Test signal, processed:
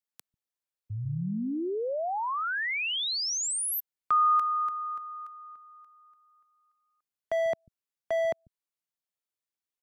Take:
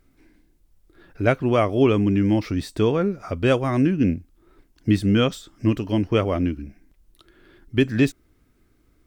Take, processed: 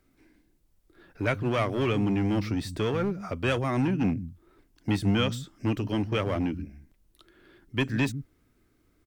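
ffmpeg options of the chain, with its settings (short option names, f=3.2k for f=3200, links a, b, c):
-filter_complex "[0:a]lowshelf=f=79:g=-8.5,acrossover=split=180|1100[a][b][c];[a]aecho=1:1:143:0.668[d];[b]asoftclip=type=hard:threshold=-24dB[e];[d][e][c]amix=inputs=3:normalize=0,volume=-3dB"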